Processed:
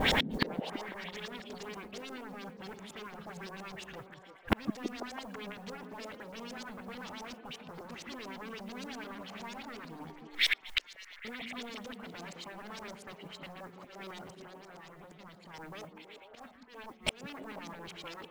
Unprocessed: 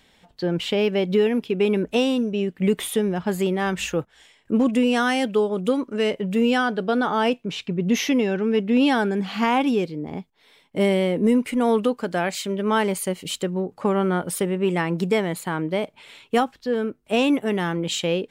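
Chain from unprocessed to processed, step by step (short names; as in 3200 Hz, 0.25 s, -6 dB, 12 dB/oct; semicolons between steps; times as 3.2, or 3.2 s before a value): in parallel at -5.5 dB: sine folder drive 20 dB, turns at -10 dBFS; on the sum: de-hum 181.6 Hz, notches 25; auto swell 0.175 s; 10.1–11.25 inverse Chebyshev band-stop 170–480 Hz, stop band 80 dB; 14.35–15.54 level quantiser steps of 12 dB; LFO low-pass saw up 8.6 Hz 550–7400 Hz; modulation noise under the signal 23 dB; flipped gate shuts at -24 dBFS, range -41 dB; on a send: delay with a stepping band-pass 0.165 s, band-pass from 210 Hz, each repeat 0.7 oct, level -1 dB; on the sum: gain +10.5 dB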